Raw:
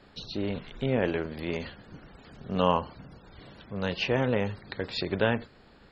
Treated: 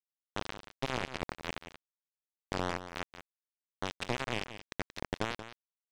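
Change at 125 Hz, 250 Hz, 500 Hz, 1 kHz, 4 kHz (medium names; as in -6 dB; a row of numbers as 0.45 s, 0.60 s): -11.0 dB, -11.5 dB, -12.0 dB, -6.5 dB, -5.5 dB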